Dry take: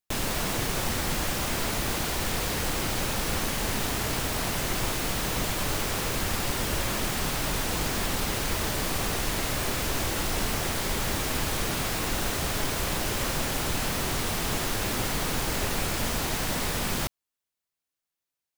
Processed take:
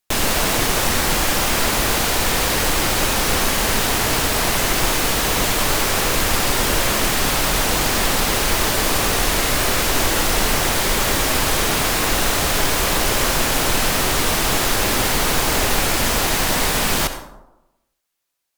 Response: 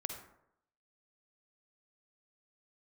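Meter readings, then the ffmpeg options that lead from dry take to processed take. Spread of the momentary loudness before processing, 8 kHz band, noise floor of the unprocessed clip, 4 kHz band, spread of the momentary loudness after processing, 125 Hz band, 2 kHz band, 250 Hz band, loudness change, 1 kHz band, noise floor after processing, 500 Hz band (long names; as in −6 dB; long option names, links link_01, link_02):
0 LU, +11.0 dB, below −85 dBFS, +11.0 dB, 0 LU, +6.0 dB, +11.0 dB, +8.0 dB, +10.5 dB, +11.0 dB, −68 dBFS, +10.0 dB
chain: -filter_complex "[0:a]asplit=2[link_01][link_02];[link_02]equalizer=frequency=110:width_type=o:width=1.9:gain=-14.5[link_03];[1:a]atrim=start_sample=2205,asetrate=33957,aresample=44100[link_04];[link_03][link_04]afir=irnorm=-1:irlink=0,volume=3.5dB[link_05];[link_01][link_05]amix=inputs=2:normalize=0,volume=3dB"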